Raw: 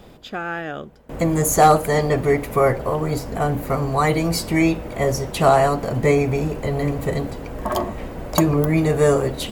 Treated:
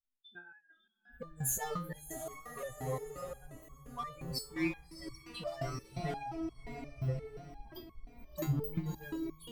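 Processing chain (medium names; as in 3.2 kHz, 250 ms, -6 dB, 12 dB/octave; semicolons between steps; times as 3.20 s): expander on every frequency bin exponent 3; bass shelf 470 Hz +8.5 dB; in parallel at -9 dB: wavefolder -21 dBFS; on the sum: treble shelf 7.5 kHz +6 dB; on a send: echo that smears into a reverb 649 ms, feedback 47%, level -7.5 dB; on the sum: resonator arpeggio 5.7 Hz 130–1100 Hz; trim -2.5 dB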